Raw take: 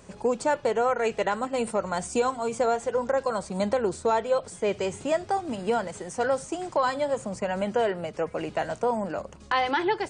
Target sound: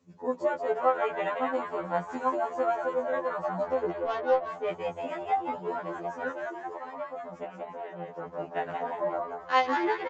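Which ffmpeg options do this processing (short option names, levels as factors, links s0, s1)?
-filter_complex "[0:a]afwtdn=0.0158,highpass=f=200:p=1,asettb=1/sr,asplit=3[s0][s1][s2];[s0]atrim=end=6.314[s3];[s1]atrim=start=6.31:end=8.09,asetpts=PTS-STARTPTS,afade=t=in:d=0.004:c=qsin,afade=t=out:st=1.776:d=0.004:c=qsin,acompressor=threshold=0.0224:ratio=6[s4];[s2]atrim=start=8.086[s5];[s3][s4]acrossfade=d=0.004:c1=hsin:c2=qsin[s6];[s6][s5]acrossfade=d=0.004:c1=qsin:c2=hsin,tremolo=f=7:d=0.4,asettb=1/sr,asplit=3[s7][s8][s9];[s7]atrim=end=3.894[s10];[s8]atrim=start=3.89:end=4.49,asetpts=PTS-STARTPTS,afade=t=in:d=0.004:c=qsin,afade=t=out:st=0.596:d=0.004:c=qsin,adynamicsmooth=sensitivity=1.5:basefreq=810[s11];[s9]atrim=start=4.486[s12];[s10][s11]acrossfade=d=0.004:c1=hsin:c2=qsin[s13];[s13][s12]acrossfade=d=0.004:c1=qsin:c2=hsin,asplit=2[s14][s15];[s15]asplit=6[s16][s17][s18][s19][s20][s21];[s16]adelay=179,afreqshift=110,volume=0.631[s22];[s17]adelay=358,afreqshift=220,volume=0.285[s23];[s18]adelay=537,afreqshift=330,volume=0.127[s24];[s19]adelay=716,afreqshift=440,volume=0.0575[s25];[s20]adelay=895,afreqshift=550,volume=0.026[s26];[s21]adelay=1074,afreqshift=660,volume=0.0116[s27];[s22][s23][s24][s25][s26][s27]amix=inputs=6:normalize=0[s28];[s14][s28]amix=inputs=2:normalize=0,aresample=16000,aresample=44100,afftfilt=real='re*2*eq(mod(b,4),0)':imag='im*2*eq(mod(b,4),0)':win_size=2048:overlap=0.75"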